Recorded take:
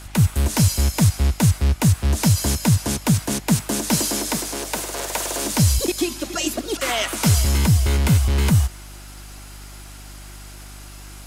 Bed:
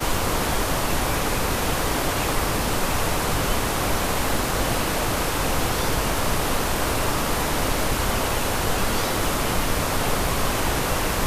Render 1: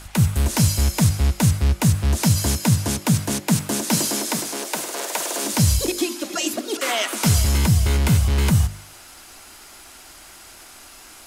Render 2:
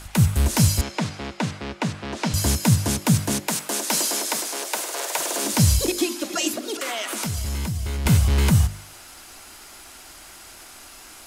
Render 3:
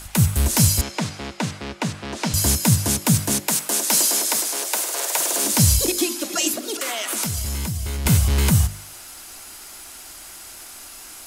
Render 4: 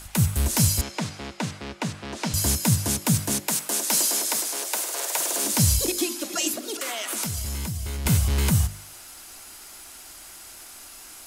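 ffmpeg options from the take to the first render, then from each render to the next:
-af "bandreject=f=50:t=h:w=4,bandreject=f=100:t=h:w=4,bandreject=f=150:t=h:w=4,bandreject=f=200:t=h:w=4,bandreject=f=250:t=h:w=4,bandreject=f=300:t=h:w=4,bandreject=f=350:t=h:w=4,bandreject=f=400:t=h:w=4,bandreject=f=450:t=h:w=4,bandreject=f=500:t=h:w=4,bandreject=f=550:t=h:w=4,bandreject=f=600:t=h:w=4"
-filter_complex "[0:a]asettb=1/sr,asplit=3[s0][s1][s2];[s0]atrim=end=0.814[s3];[s1]atrim=start=0.81:end=2.34,asetpts=PTS-STARTPTS,afade=t=in:d=0.004:c=qsin,afade=t=out:st=1.526:d=0.004:c=qsin,highpass=260,lowpass=3700[s4];[s2]atrim=start=2.336[s5];[s3][s4]acrossfade=d=0.004:c1=hsin:c2=qsin[s6];[s6][s5]acrossfade=d=0.004:c1=qsin:c2=hsin,asettb=1/sr,asplit=3[s7][s8][s9];[s7]atrim=end=3.474[s10];[s8]atrim=start=3.47:end=5.19,asetpts=PTS-STARTPTS,afade=t=in:d=0.004:c=qsin,afade=t=out:st=1.716:d=0.004:c=qsin,highpass=420[s11];[s9]atrim=start=5.186[s12];[s10][s11]acrossfade=d=0.004:c1=hsin:c2=qsin[s13];[s13][s12]acrossfade=d=0.004:c1=qsin:c2=hsin,asettb=1/sr,asplit=3[s14][s15][s16];[s14]atrim=end=6.514[s17];[s15]atrim=start=6.51:end=8.06,asetpts=PTS-STARTPTS,afade=t=in:d=0.004:c=qsin,afade=t=out:st=1.546:d=0.004:c=qsin,acompressor=threshold=0.0631:ratio=6:attack=3.2:release=140:knee=1:detection=peak[s18];[s16]atrim=start=8.056[s19];[s17][s18]acrossfade=d=0.004:c1=hsin:c2=qsin[s20];[s20][s19]acrossfade=d=0.004:c1=qsin:c2=hsin"
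-af "highshelf=f=6200:g=8.5"
-af "volume=0.631"

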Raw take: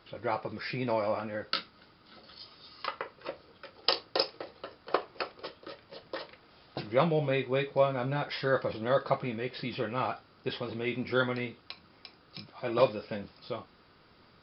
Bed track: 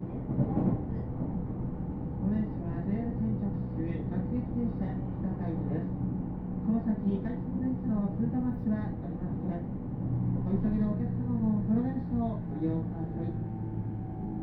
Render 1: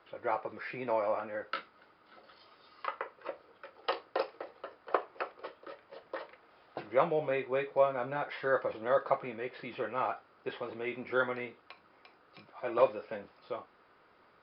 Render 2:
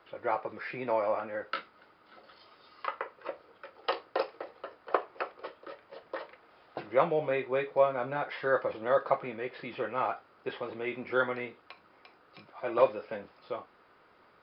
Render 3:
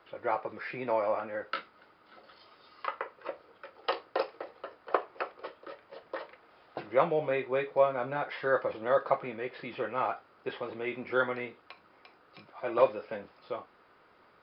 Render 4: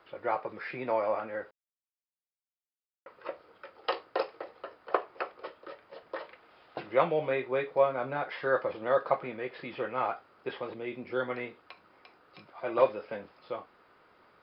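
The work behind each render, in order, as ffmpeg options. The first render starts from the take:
-filter_complex "[0:a]acrossover=split=4200[s0][s1];[s1]acompressor=threshold=0.00224:ratio=4:attack=1:release=60[s2];[s0][s2]amix=inputs=2:normalize=0,acrossover=split=350 2500:gain=0.2 1 0.158[s3][s4][s5];[s3][s4][s5]amix=inputs=3:normalize=0"
-af "volume=1.26"
-af anull
-filter_complex "[0:a]asettb=1/sr,asplit=3[s0][s1][s2];[s0]atrim=end=6.244[s3];[s1]atrim=start=6.24:end=7.34,asetpts=PTS-STARTPTS,afade=t=in:d=0.004:c=qsin,afade=t=out:st=1.096:d=0.004:c=qsin,equalizer=f=3000:w=1.2:g=3.5[s4];[s2]atrim=start=7.336[s5];[s3][s4]acrossfade=d=0.004:c1=hsin:c2=qsin[s6];[s6][s5]acrossfade=d=0.004:c1=qsin:c2=hsin,asettb=1/sr,asplit=3[s7][s8][s9];[s7]atrim=end=10.744[s10];[s8]atrim=start=10.74:end=11.3,asetpts=PTS-STARTPTS,afade=t=in:d=0.004:c=qsin,afade=t=out:st=0.556:d=0.004:c=qsin,equalizer=f=1400:w=0.54:g=-7[s11];[s9]atrim=start=11.296[s12];[s10][s11]acrossfade=d=0.004:c1=hsin:c2=qsin[s13];[s13][s12]acrossfade=d=0.004:c1=qsin:c2=hsin,asplit=3[s14][s15][s16];[s14]atrim=end=1.51,asetpts=PTS-STARTPTS,afade=t=out:st=1.506:d=0.004:c=hsin[s17];[s15]atrim=start=1.51:end=3.06,asetpts=PTS-STARTPTS,volume=0[s18];[s16]atrim=start=3.06,asetpts=PTS-STARTPTS,afade=t=in:d=0.004:c=hsin[s19];[s17][s18][s19]concat=n=3:v=0:a=1"

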